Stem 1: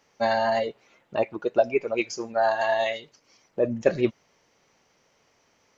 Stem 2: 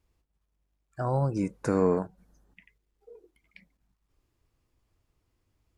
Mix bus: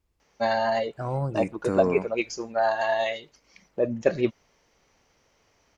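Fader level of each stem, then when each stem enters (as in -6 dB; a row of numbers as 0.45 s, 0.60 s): -1.0 dB, -1.5 dB; 0.20 s, 0.00 s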